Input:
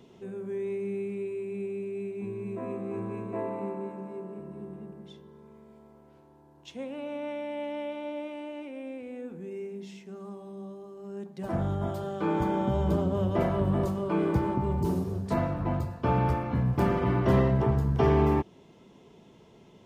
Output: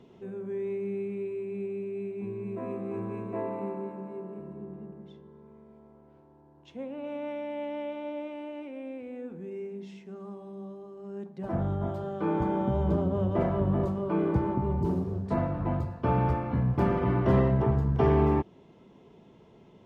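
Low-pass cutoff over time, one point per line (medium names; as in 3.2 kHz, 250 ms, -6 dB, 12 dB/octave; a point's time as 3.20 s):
low-pass 6 dB/octave
2.5 kHz
from 2.57 s 3.9 kHz
from 3.81 s 2.5 kHz
from 4.53 s 1.3 kHz
from 7.04 s 2.6 kHz
from 11.29 s 1.5 kHz
from 15.54 s 2.2 kHz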